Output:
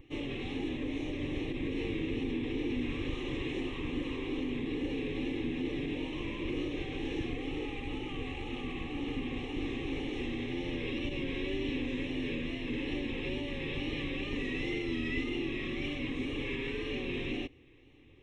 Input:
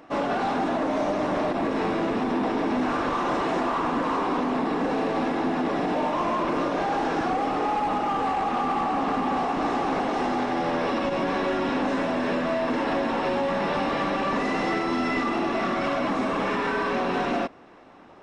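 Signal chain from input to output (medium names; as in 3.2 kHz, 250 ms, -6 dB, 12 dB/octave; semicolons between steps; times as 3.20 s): FFT filter 160 Hz 0 dB, 630 Hz -14 dB, 950 Hz -28 dB, 2.4 kHz -2 dB, 4.1 kHz +5 dB, 8.6 kHz -5 dB; wow and flutter 75 cents; tone controls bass +7 dB, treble -5 dB; static phaser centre 970 Hz, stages 8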